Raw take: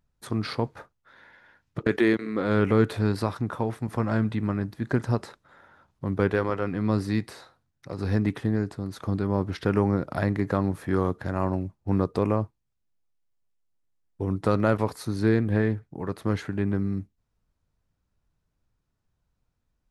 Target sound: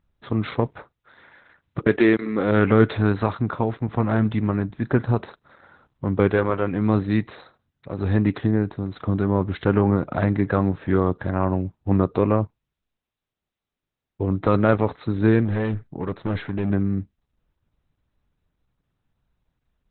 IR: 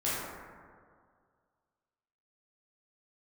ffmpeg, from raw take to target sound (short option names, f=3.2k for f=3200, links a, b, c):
-filter_complex "[0:a]asettb=1/sr,asplit=3[a][b][c];[a]atrim=end=2.514[d];[b]atrim=start=2.51:end=3.32,asetpts=PTS-STARTPTS,afade=t=in:d=0.004:c=qsin,afade=t=out:st=0.806:d=0.004:c=qsin,adynamicequalizer=threshold=0.0112:dfrequency=1500:dqfactor=0.95:tfrequency=1500:tqfactor=0.95:attack=5:release=100:ratio=0.375:range=1.5:mode=boostabove:tftype=bell[e];[c]atrim=start=3.316[f];[d][e]acrossfade=d=0.004:c1=hsin:c2=qsin[g];[g][f]acrossfade=d=0.004:c1=qsin:c2=hsin,asettb=1/sr,asplit=3[h][i][j];[h]atrim=end=15.454[k];[i]atrim=start=15.45:end=16.7,asetpts=PTS-STARTPTS,afade=t=in:d=0.004:c=qsin,afade=t=out:st=1.246:d=0.004:c=qsin,volume=23.5dB,asoftclip=hard,volume=-23.5dB[l];[j]atrim=start=16.696[m];[k][l]acrossfade=d=0.004:c1=hsin:c2=qsin[n];[n][m]acrossfade=d=0.004:c1=qsin:c2=hsin,volume=5dB" -ar 48000 -c:a libopus -b:a 8k